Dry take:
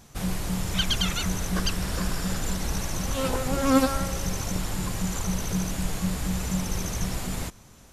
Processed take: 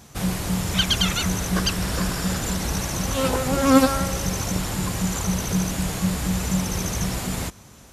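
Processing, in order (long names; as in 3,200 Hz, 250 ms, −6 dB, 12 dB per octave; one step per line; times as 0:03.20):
high-pass filter 51 Hz
level +5 dB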